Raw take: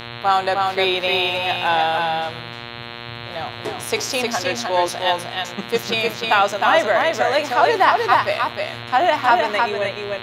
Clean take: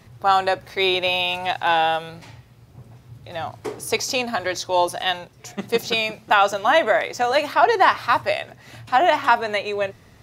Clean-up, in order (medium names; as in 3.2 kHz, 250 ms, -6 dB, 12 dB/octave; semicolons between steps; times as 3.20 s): de-click; de-hum 118.6 Hz, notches 36; inverse comb 308 ms -3.5 dB